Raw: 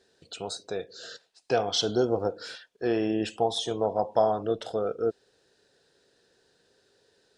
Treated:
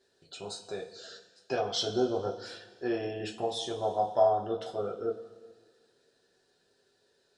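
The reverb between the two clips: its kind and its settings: two-slope reverb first 0.21 s, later 1.7 s, from -18 dB, DRR -1.5 dB; gain -8 dB

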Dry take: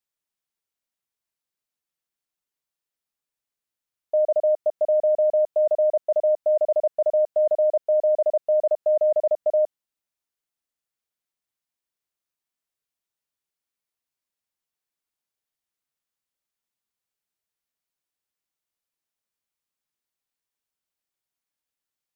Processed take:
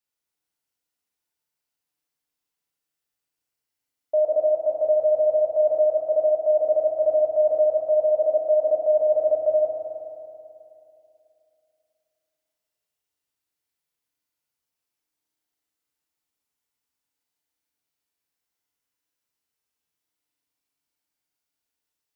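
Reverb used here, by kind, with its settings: FDN reverb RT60 2.8 s, high-frequency decay 1×, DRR -4 dB; gain -2 dB

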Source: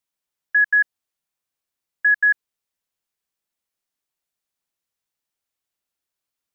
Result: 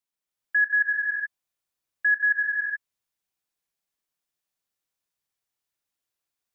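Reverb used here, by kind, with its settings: non-linear reverb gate 0.45 s rising, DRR -2 dB; gain -5.5 dB

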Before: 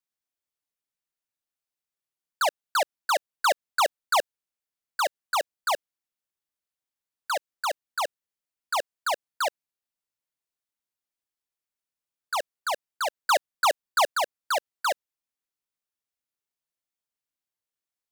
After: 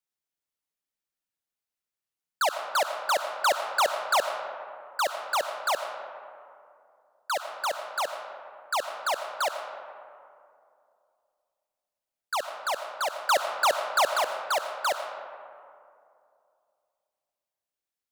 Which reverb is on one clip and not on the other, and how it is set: digital reverb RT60 2.5 s, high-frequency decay 0.4×, pre-delay 45 ms, DRR 7 dB; gain -1 dB

